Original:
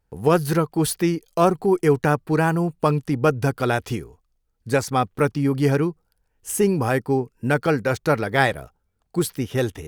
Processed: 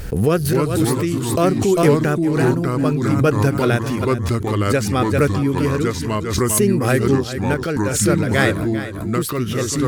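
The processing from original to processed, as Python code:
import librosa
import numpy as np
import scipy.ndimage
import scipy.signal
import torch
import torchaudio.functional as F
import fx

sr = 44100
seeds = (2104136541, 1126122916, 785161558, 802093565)

p1 = fx.peak_eq(x, sr, hz=880.0, db=-13.0, octaves=0.51)
p2 = fx.rider(p1, sr, range_db=10, speed_s=0.5)
p3 = p1 + F.gain(torch.from_numpy(p2), -1.0).numpy()
p4 = p3 * (1.0 - 0.5 / 2.0 + 0.5 / 2.0 * np.cos(2.0 * np.pi * 0.58 * (np.arange(len(p3)) / sr)))
p5 = fx.echo_pitch(p4, sr, ms=215, semitones=-3, count=2, db_per_echo=-3.0)
p6 = p5 + fx.echo_single(p5, sr, ms=396, db=-12.5, dry=0)
p7 = fx.pre_swell(p6, sr, db_per_s=50.0)
y = F.gain(torch.from_numpy(p7), -2.0).numpy()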